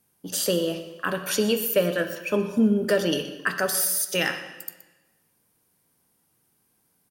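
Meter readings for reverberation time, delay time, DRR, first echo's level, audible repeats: 1.2 s, 122 ms, 7.0 dB, −16.5 dB, 1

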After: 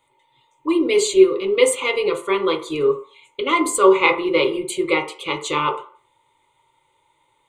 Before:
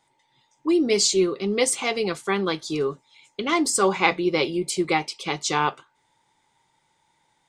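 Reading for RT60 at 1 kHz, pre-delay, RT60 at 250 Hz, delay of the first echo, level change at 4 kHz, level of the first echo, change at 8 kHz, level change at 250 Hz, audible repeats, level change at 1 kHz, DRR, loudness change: 0.45 s, 3 ms, 0.35 s, no echo audible, +0.5 dB, no echo audible, −1.5 dB, +2.5 dB, no echo audible, +3.5 dB, 3.0 dB, +4.0 dB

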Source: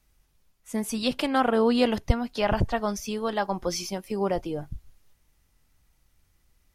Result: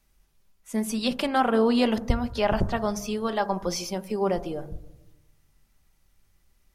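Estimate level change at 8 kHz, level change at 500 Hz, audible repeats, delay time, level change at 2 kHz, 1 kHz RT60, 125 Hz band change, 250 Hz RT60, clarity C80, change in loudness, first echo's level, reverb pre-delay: 0.0 dB, +0.5 dB, no echo audible, no echo audible, 0.0 dB, 0.85 s, −1.0 dB, 1.3 s, 20.0 dB, +0.5 dB, no echo audible, 5 ms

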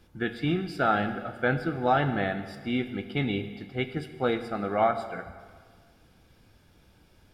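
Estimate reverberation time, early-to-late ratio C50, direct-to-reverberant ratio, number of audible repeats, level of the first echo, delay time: 1.6 s, 11.0 dB, 9.0 dB, no echo audible, no echo audible, no echo audible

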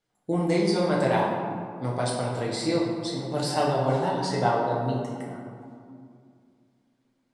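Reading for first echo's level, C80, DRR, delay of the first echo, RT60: no echo audible, 2.5 dB, −5.0 dB, no echo audible, 2.5 s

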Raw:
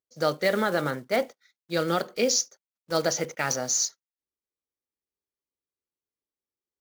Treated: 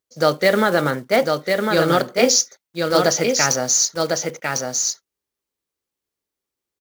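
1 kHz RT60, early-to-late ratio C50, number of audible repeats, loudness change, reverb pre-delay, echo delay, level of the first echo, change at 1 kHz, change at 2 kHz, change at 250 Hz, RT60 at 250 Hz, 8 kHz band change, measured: no reverb audible, no reverb audible, 1, +8.0 dB, no reverb audible, 1,051 ms, −4.0 dB, +9.5 dB, +9.5 dB, +9.5 dB, no reverb audible, +9.5 dB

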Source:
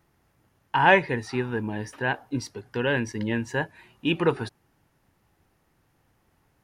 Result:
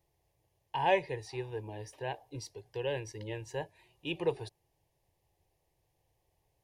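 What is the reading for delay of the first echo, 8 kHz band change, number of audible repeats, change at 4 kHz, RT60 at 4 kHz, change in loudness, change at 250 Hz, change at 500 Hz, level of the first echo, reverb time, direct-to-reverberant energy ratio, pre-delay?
no echo audible, −7.0 dB, no echo audible, −9.0 dB, no reverb audible, −10.5 dB, −15.5 dB, −7.5 dB, no echo audible, no reverb audible, no reverb audible, no reverb audible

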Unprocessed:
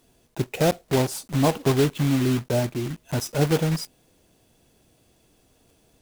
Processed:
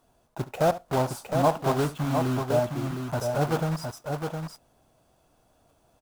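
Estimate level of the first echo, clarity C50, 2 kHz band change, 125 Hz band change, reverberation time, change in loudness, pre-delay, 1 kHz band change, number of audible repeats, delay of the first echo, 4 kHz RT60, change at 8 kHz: −16.5 dB, no reverb audible, −3.5 dB, −4.5 dB, no reverb audible, −3.5 dB, no reverb audible, +3.5 dB, 2, 70 ms, no reverb audible, −7.5 dB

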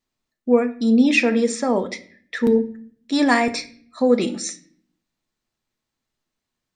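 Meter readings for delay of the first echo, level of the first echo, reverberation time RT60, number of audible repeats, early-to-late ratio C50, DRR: no echo audible, no echo audible, 0.55 s, no echo audible, 16.0 dB, 8.0 dB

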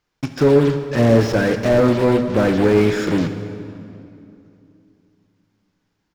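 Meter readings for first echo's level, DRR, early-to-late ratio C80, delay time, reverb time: −19.0 dB, 8.0 dB, 9.5 dB, 86 ms, 2.7 s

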